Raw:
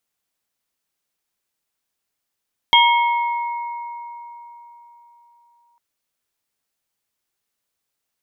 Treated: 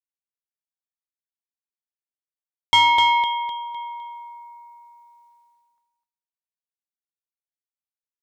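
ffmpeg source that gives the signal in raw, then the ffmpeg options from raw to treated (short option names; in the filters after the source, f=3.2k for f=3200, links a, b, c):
-f lavfi -i "aevalsrc='0.282*pow(10,-3*t/3.88)*sin(2*PI*946*t)+0.168*pow(10,-3*t/2.33)*sin(2*PI*2180*t)+0.316*pow(10,-3*t/0.76)*sin(2*PI*3230*t)':d=3.05:s=44100"
-filter_complex "[0:a]asplit=2[a][b];[b]aecho=0:1:254|508|762|1016|1270:0.631|0.246|0.096|0.0374|0.0146[c];[a][c]amix=inputs=2:normalize=0,agate=range=-33dB:threshold=-55dB:ratio=3:detection=peak,asoftclip=type=tanh:threshold=-7.5dB"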